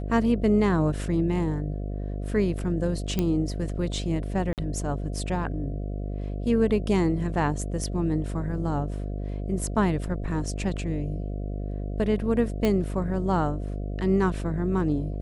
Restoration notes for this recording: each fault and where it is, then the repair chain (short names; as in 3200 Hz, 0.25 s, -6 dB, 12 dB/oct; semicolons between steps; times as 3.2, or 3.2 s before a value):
buzz 50 Hz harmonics 14 -31 dBFS
3.19 pop -12 dBFS
4.53–4.58 gap 48 ms
12.65 pop -12 dBFS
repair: de-click; de-hum 50 Hz, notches 14; interpolate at 4.53, 48 ms